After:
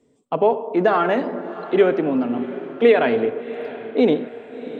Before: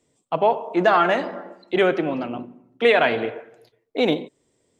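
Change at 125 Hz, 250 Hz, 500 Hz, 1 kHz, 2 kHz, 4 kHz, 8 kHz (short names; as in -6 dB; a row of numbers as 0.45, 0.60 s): +1.0 dB, +4.5 dB, +3.0 dB, -1.5 dB, -3.5 dB, -5.5 dB, n/a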